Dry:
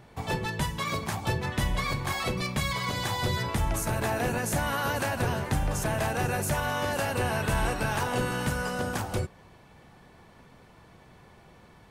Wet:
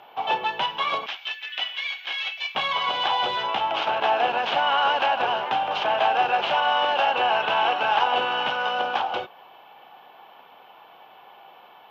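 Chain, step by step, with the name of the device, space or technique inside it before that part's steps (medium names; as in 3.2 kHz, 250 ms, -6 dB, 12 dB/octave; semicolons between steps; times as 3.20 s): 1.06–2.55 s: steep high-pass 1.7 kHz 48 dB/octave; toy sound module (decimation joined by straight lines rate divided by 4×; class-D stage that switches slowly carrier 12 kHz; cabinet simulation 680–4900 Hz, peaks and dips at 790 Hz +9 dB, 1.9 kHz -9 dB, 3 kHz +10 dB, 4.5 kHz -8 dB); trim +8 dB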